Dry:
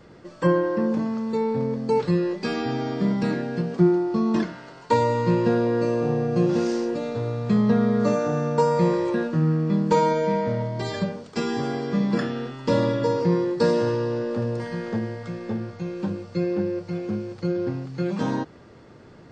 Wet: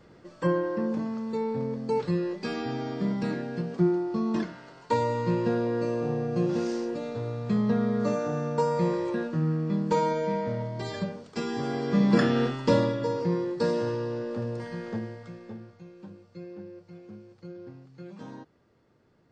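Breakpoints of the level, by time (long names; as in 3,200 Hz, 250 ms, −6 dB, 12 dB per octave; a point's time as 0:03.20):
0:11.52 −5.5 dB
0:12.44 +6 dB
0:12.96 −6 dB
0:14.96 −6 dB
0:15.93 −17.5 dB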